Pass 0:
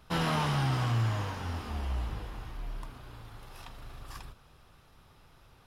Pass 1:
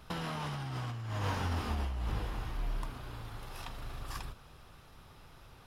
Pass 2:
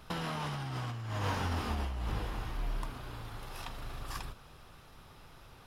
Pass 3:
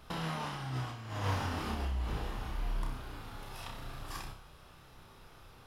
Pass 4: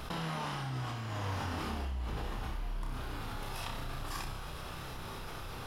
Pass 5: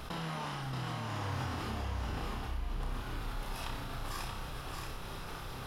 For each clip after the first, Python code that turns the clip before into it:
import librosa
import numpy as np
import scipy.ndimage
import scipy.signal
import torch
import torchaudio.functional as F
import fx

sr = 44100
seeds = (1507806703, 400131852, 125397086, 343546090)

y1 = fx.over_compress(x, sr, threshold_db=-35.0, ratio=-1.0)
y2 = fx.peak_eq(y1, sr, hz=64.0, db=-2.5, octaves=2.1)
y2 = y2 * librosa.db_to_amplitude(1.5)
y3 = fx.room_flutter(y2, sr, wall_m=5.3, rt60_s=0.38)
y3 = y3 * librosa.db_to_amplitude(-2.5)
y4 = fx.env_flatten(y3, sr, amount_pct=70)
y4 = y4 * librosa.db_to_amplitude(-5.0)
y5 = y4 + 10.0 ** (-4.0 / 20.0) * np.pad(y4, (int(629 * sr / 1000.0), 0))[:len(y4)]
y5 = y5 * librosa.db_to_amplitude(-1.5)